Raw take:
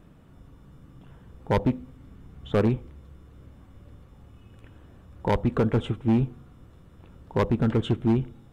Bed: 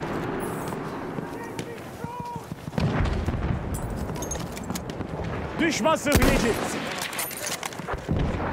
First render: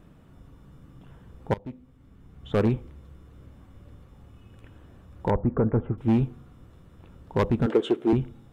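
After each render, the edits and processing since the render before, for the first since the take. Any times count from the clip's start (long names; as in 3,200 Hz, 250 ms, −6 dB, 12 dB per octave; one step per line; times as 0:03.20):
0:01.54–0:02.70: fade in, from −23 dB
0:05.30–0:05.98: Bessel low-pass filter 1,100 Hz, order 6
0:07.66–0:08.13: high-pass with resonance 390 Hz, resonance Q 2.5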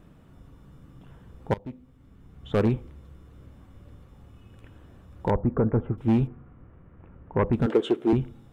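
0:06.27–0:07.53: inverse Chebyshev low-pass filter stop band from 4,500 Hz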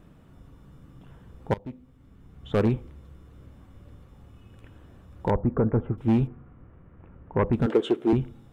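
no processing that can be heard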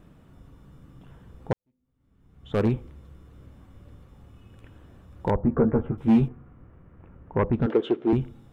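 0:01.53–0:02.66: fade in quadratic
0:05.42–0:06.32: double-tracking delay 13 ms −2.5 dB
0:07.45–0:08.13: high-frequency loss of the air 170 metres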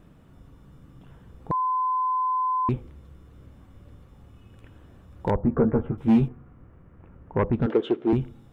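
0:01.51–0:02.69: beep over 1,020 Hz −21.5 dBFS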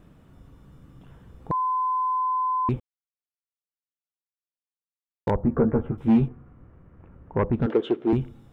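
0:01.55–0:02.19: centre clipping without the shift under −53 dBFS
0:02.80–0:05.27: silence
0:06.08–0:07.57: low-pass filter 3,400 Hz 6 dB per octave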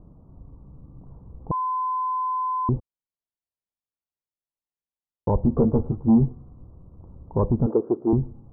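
Butterworth low-pass 1,100 Hz 48 dB per octave
low-shelf EQ 120 Hz +7.5 dB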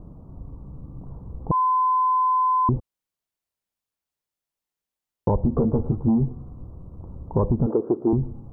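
in parallel at +1 dB: brickwall limiter −17.5 dBFS, peak gain reduction 8 dB
on the sum: downward compressor, threshold −17 dBFS, peak gain reduction 7.5 dB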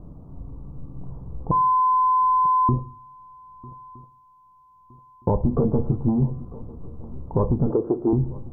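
feedback echo with a long and a short gap by turns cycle 1,265 ms, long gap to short 3 to 1, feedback 37%, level −21.5 dB
rectangular room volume 130 cubic metres, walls furnished, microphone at 0.34 metres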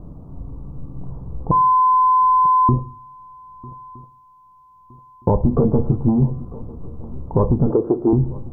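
level +4.5 dB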